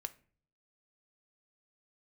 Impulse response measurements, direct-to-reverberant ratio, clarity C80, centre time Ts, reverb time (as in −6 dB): 9.5 dB, 24.0 dB, 3 ms, 0.45 s